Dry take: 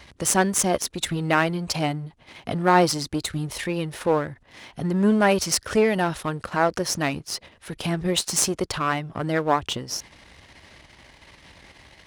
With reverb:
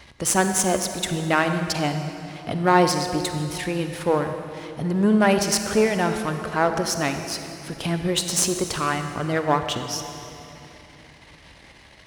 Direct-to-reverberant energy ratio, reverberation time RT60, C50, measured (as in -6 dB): 6.5 dB, 3.0 s, 7.0 dB